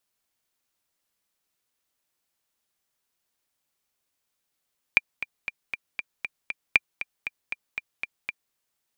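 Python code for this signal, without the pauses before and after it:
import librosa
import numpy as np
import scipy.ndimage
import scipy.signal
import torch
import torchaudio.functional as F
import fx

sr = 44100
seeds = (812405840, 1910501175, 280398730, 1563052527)

y = fx.click_track(sr, bpm=235, beats=7, bars=2, hz=2380.0, accent_db=13.5, level_db=-3.0)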